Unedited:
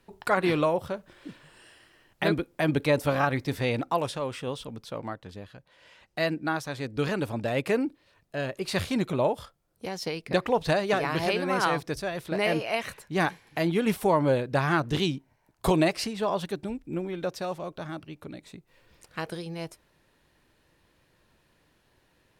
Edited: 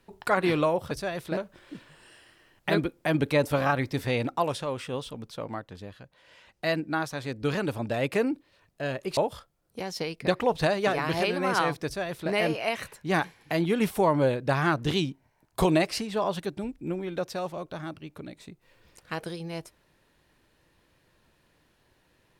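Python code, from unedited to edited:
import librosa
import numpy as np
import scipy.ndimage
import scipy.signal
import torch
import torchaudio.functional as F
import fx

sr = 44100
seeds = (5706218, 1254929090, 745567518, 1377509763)

y = fx.edit(x, sr, fx.cut(start_s=8.71, length_s=0.52),
    fx.duplicate(start_s=11.91, length_s=0.46, to_s=0.91), tone=tone)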